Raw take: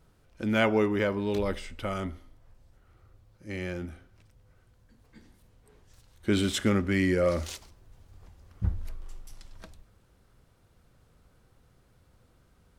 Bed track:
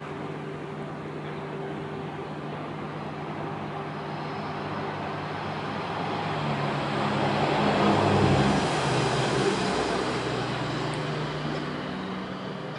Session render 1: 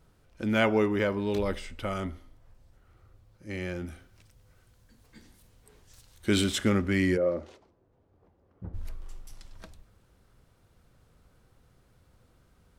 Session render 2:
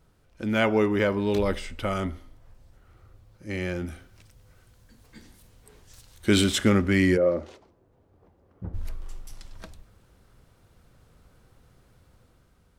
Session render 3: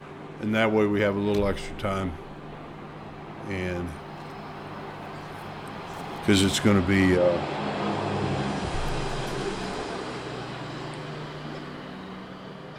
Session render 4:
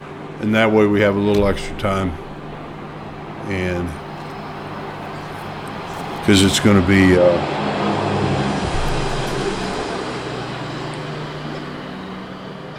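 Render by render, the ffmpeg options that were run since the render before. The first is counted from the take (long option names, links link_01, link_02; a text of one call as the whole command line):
ffmpeg -i in.wav -filter_complex "[0:a]asettb=1/sr,asplit=3[link_01][link_02][link_03];[link_01]atrim=end=3.864[link_04];[link_02]atrim=start=3.86:end=6.44,asetpts=PTS-STARTPTS,afade=type=in:duration=0.004:curve=qsin,afade=type=out:start_time=2.576:duration=0.004:curve=qsin,highshelf=frequency=2800:gain=8[link_05];[link_03]atrim=start=6.436[link_06];[link_04][link_05]acrossfade=duration=0.004:curve1=hsin:curve2=qsin[link_07];[link_07][link_06]acrossfade=duration=0.004:curve1=qsin:curve2=hsin,asplit=3[link_08][link_09][link_10];[link_08]afade=type=out:start_time=7.16:duration=0.02[link_11];[link_09]bandpass=frequency=420:width_type=q:width=0.98,afade=type=in:start_time=7.16:duration=0.02,afade=type=out:start_time=8.73:duration=0.02[link_12];[link_10]afade=type=in:start_time=8.73:duration=0.02[link_13];[link_11][link_12][link_13]amix=inputs=3:normalize=0" out.wav
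ffmpeg -i in.wav -af "dynaudnorm=framelen=320:gausssize=5:maxgain=4.5dB" out.wav
ffmpeg -i in.wav -i bed.wav -filter_complex "[1:a]volume=-6dB[link_01];[0:a][link_01]amix=inputs=2:normalize=0" out.wav
ffmpeg -i in.wav -af "volume=8.5dB,alimiter=limit=-2dB:level=0:latency=1" out.wav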